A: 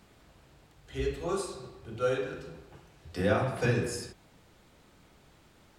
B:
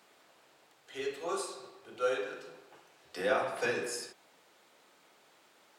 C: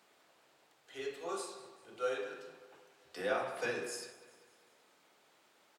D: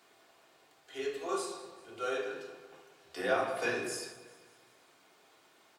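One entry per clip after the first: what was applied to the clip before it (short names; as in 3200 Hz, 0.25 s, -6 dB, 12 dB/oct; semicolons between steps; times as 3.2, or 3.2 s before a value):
HPF 460 Hz 12 dB/oct
feedback echo 0.196 s, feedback 55%, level -19 dB; gain -4.5 dB
reverb RT60 0.75 s, pre-delay 3 ms, DRR 3 dB; gain +2.5 dB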